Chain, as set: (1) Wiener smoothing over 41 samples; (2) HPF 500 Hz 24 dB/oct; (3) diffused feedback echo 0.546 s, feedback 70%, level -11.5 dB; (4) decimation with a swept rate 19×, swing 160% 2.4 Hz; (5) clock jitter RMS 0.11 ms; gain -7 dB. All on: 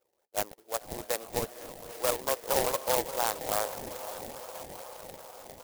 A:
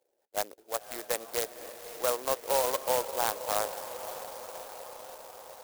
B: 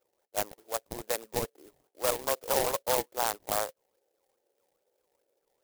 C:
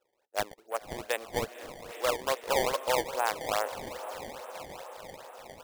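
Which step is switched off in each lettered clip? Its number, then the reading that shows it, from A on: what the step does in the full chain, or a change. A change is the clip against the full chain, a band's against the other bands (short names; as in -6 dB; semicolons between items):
4, 125 Hz band -8.0 dB; 3, momentary loudness spread change -7 LU; 5, 8 kHz band -5.5 dB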